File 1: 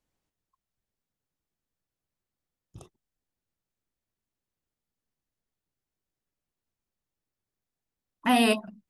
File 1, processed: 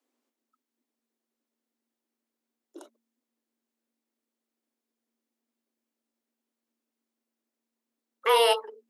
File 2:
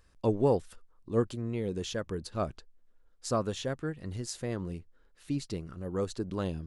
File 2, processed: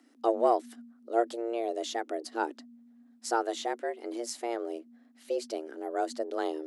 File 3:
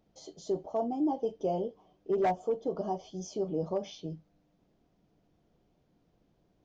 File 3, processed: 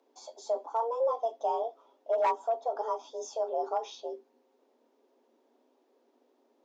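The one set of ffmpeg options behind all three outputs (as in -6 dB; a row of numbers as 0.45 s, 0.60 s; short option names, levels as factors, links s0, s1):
-af "afreqshift=230,acontrast=34,volume=0.596"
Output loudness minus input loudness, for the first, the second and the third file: +1.0 LU, +1.0 LU, +1.0 LU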